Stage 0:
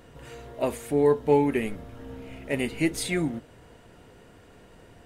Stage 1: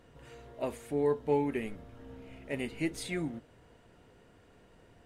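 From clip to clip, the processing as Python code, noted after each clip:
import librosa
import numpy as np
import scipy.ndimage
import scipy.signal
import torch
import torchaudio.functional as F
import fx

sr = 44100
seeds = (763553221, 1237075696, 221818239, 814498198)

y = fx.high_shelf(x, sr, hz=10000.0, db=-7.0)
y = y * 10.0 ** (-8.0 / 20.0)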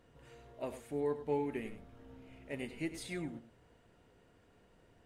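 y = x + 10.0 ** (-12.0 / 20.0) * np.pad(x, (int(100 * sr / 1000.0), 0))[:len(x)]
y = y * 10.0 ** (-6.0 / 20.0)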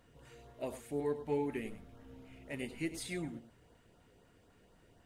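y = fx.filter_lfo_notch(x, sr, shape='saw_up', hz=4.0, low_hz=330.0, high_hz=2900.0, q=2.2)
y = fx.high_shelf(y, sr, hz=6000.0, db=4.5)
y = y * 10.0 ** (1.0 / 20.0)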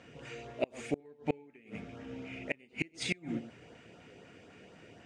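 y = fx.cabinet(x, sr, low_hz=130.0, low_slope=12, high_hz=6800.0, hz=(1000.0, 2400.0, 4100.0), db=(-6, 8, -5))
y = fx.gate_flip(y, sr, shuts_db=-29.0, range_db=-31)
y = y * 10.0 ** (11.5 / 20.0)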